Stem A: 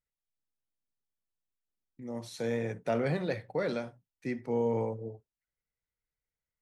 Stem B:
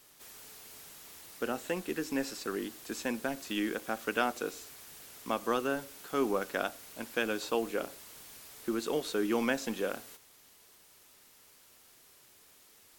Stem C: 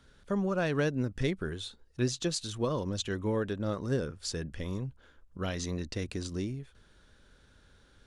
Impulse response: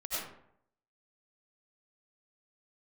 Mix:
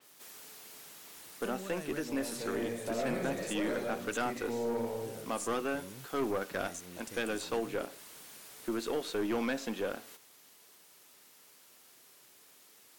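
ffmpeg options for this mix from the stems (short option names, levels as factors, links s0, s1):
-filter_complex "[0:a]volume=1.33,asplit=3[s0][s1][s2];[s1]volume=0.299[s3];[1:a]volume=1.12[s4];[2:a]adelay=1150,volume=0.668[s5];[s2]apad=whole_len=406323[s6];[s5][s6]sidechaincompress=threshold=0.0112:ratio=8:attack=16:release=216[s7];[s0][s7]amix=inputs=2:normalize=0,aexciter=amount=15:drive=7.6:freq=6800,acompressor=threshold=0.00447:ratio=2,volume=1[s8];[3:a]atrim=start_sample=2205[s9];[s3][s9]afir=irnorm=-1:irlink=0[s10];[s4][s8][s10]amix=inputs=3:normalize=0,highpass=150,aeval=exprs='(tanh(20*val(0)+0.25)-tanh(0.25))/20':c=same,adynamicequalizer=threshold=0.00224:dfrequency=4800:dqfactor=0.7:tfrequency=4800:tqfactor=0.7:attack=5:release=100:ratio=0.375:range=3:mode=cutabove:tftype=highshelf"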